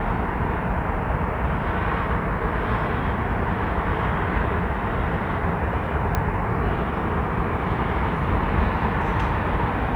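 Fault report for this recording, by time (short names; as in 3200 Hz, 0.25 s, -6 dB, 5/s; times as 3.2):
6.15 pop -9 dBFS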